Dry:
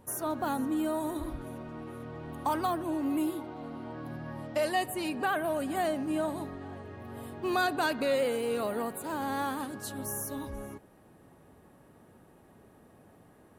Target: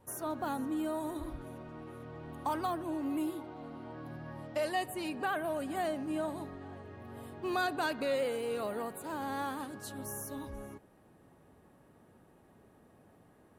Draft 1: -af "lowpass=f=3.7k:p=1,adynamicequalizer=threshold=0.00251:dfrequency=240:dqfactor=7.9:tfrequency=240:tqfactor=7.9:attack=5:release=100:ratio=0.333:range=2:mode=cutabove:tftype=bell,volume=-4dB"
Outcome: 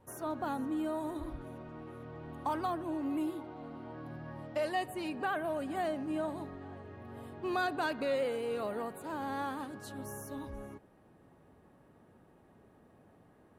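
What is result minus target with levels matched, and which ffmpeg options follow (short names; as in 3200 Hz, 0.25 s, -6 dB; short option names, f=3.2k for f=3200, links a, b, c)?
8000 Hz band -6.0 dB
-af "lowpass=f=11k:p=1,adynamicequalizer=threshold=0.00251:dfrequency=240:dqfactor=7.9:tfrequency=240:tqfactor=7.9:attack=5:release=100:ratio=0.333:range=2:mode=cutabove:tftype=bell,volume=-4dB"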